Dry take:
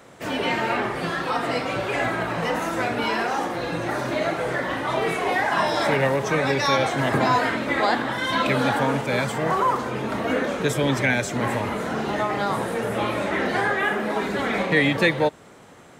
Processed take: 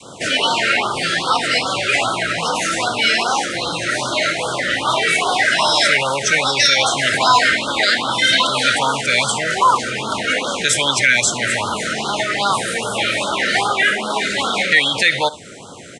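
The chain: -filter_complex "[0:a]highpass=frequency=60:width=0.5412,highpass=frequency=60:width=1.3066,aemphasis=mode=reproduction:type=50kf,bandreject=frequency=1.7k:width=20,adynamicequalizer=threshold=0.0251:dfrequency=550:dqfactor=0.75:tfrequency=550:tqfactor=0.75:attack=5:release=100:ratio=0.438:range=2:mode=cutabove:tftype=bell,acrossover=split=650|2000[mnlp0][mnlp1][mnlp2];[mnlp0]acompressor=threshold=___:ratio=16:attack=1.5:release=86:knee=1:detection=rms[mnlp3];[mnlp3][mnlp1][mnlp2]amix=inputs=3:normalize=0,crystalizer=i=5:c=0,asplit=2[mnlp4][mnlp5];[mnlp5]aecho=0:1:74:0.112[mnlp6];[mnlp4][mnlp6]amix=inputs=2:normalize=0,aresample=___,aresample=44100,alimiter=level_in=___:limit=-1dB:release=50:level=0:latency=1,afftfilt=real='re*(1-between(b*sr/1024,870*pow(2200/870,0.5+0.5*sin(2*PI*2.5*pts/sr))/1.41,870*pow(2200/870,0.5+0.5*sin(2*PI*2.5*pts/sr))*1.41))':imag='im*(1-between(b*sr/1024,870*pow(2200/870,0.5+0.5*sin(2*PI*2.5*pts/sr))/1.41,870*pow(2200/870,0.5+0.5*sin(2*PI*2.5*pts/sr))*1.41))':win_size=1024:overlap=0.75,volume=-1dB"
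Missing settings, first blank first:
-36dB, 22050, 11dB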